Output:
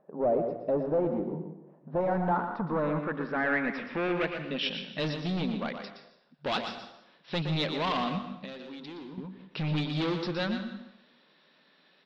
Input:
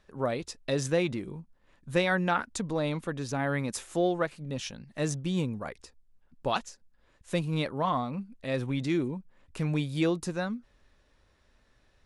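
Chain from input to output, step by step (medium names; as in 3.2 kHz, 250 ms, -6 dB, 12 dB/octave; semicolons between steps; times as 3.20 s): in parallel at -7 dB: saturation -28.5 dBFS, distortion -9 dB; on the sum: FFT band-pass 140–5700 Hz; overload inside the chain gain 28 dB; low-pass sweep 680 Hz -> 3.8 kHz, 1.79–4.93 s; on a send: delay 118 ms -8 dB; 8.18–9.18 s: on the sum: compression 12:1, threshold -41 dBFS, peak gain reduction 14 dB; plate-style reverb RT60 0.79 s, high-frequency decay 0.85×, pre-delay 120 ms, DRR 10.5 dB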